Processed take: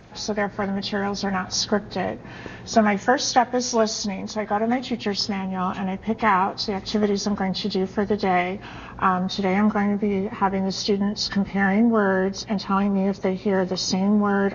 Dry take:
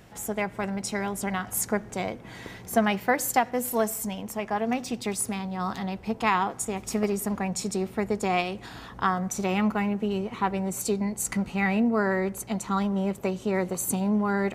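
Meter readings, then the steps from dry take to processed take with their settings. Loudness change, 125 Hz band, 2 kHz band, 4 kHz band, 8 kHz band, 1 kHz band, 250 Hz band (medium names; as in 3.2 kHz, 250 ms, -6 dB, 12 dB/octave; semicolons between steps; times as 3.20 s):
+4.5 dB, +5.0 dB, +4.0 dB, +11.5 dB, -0.5 dB, +5.0 dB, +5.0 dB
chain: knee-point frequency compression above 1.4 kHz 1.5:1; trim +5 dB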